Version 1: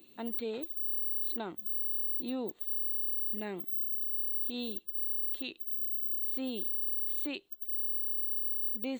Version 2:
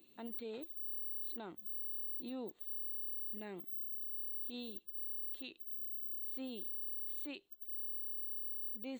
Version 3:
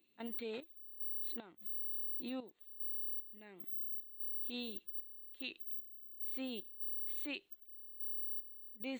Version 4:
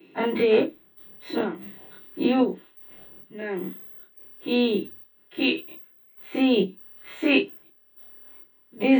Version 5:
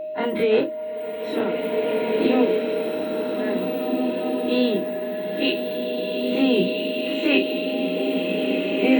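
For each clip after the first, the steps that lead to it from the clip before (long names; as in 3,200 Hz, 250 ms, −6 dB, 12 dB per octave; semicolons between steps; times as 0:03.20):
brickwall limiter −30.5 dBFS, peak gain reduction 5 dB; level −6.5 dB
parametric band 2,200 Hz +7 dB 1.3 octaves; gate pattern ".xx..xx.xxxx." 75 BPM −12 dB; level +1.5 dB
every bin's largest magnitude spread in time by 60 ms; convolution reverb RT60 0.20 s, pre-delay 3 ms, DRR −12 dB; level +2 dB
tape wow and flutter 45 cents; steady tone 620 Hz −28 dBFS; slow-attack reverb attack 1,950 ms, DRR −1 dB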